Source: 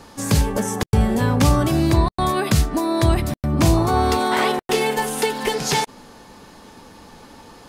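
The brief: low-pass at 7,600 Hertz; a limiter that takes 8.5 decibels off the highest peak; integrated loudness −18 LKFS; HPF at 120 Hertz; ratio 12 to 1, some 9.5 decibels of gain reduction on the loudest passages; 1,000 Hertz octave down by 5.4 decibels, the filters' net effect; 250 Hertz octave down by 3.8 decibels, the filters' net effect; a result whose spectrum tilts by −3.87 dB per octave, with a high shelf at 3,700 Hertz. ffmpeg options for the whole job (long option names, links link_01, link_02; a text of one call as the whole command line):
ffmpeg -i in.wav -af "highpass=120,lowpass=7600,equalizer=frequency=250:width_type=o:gain=-4.5,equalizer=frequency=1000:width_type=o:gain=-7.5,highshelf=frequency=3700:gain=7,acompressor=threshold=-25dB:ratio=12,volume=12.5dB,alimiter=limit=-8dB:level=0:latency=1" out.wav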